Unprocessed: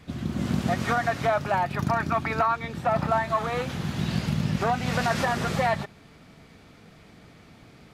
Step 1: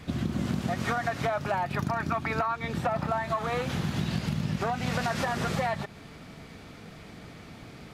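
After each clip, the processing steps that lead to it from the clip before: compressor, threshold -31 dBFS, peak gain reduction 11.5 dB; gain +5 dB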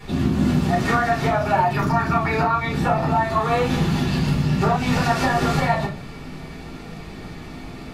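shoebox room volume 190 m³, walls furnished, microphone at 4.3 m

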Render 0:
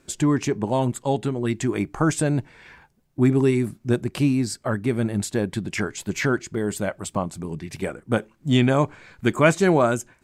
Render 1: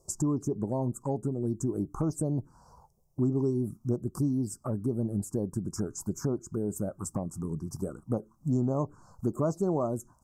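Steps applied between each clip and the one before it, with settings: elliptic band-stop 1200–5400 Hz, stop band 40 dB; compressor 2.5:1, threshold -28 dBFS, peak gain reduction 10.5 dB; envelope phaser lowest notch 250 Hz, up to 2100 Hz, full sweep at -22.5 dBFS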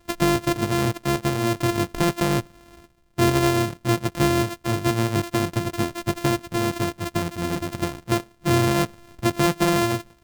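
sample sorter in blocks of 128 samples; gain +8 dB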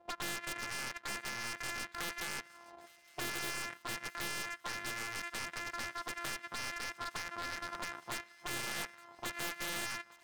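auto-wah 680–1900 Hz, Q 2.3, up, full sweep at -21 dBFS; wavefolder -32.5 dBFS; thin delay 0.864 s, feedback 66%, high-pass 1500 Hz, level -22 dB; gain +2 dB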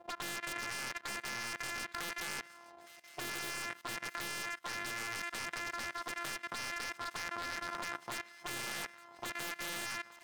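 level quantiser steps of 16 dB; low shelf 80 Hz -6 dB; gain +8 dB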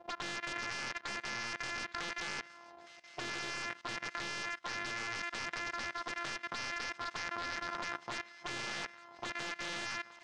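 LPF 6400 Hz 24 dB/oct; gain +1 dB

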